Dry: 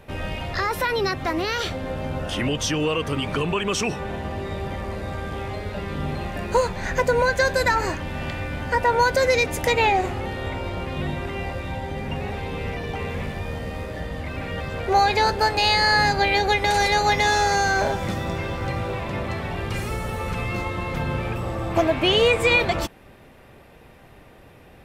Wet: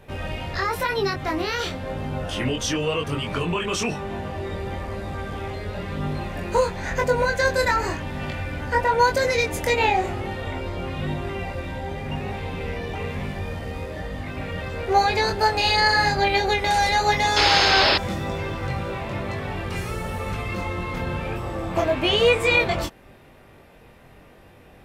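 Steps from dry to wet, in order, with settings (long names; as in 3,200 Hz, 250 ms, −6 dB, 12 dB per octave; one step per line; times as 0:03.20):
chorus effect 0.98 Hz, delay 20 ms, depth 3.5 ms
sound drawn into the spectrogram noise, 0:17.36–0:17.98, 270–5,400 Hz −21 dBFS
level +2 dB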